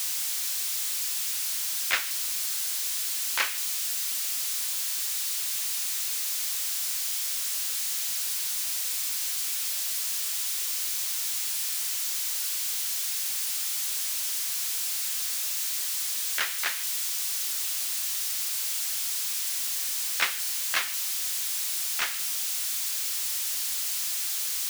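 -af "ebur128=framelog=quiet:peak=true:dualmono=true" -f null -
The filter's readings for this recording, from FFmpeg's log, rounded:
Integrated loudness:
  I:         -23.5 LUFS
  Threshold: -33.5 LUFS
Loudness range:
  LRA:         0.3 LU
  Threshold: -43.5 LUFS
  LRA low:   -23.6 LUFS
  LRA high:  -23.2 LUFS
True peak:
  Peak:       -9.3 dBFS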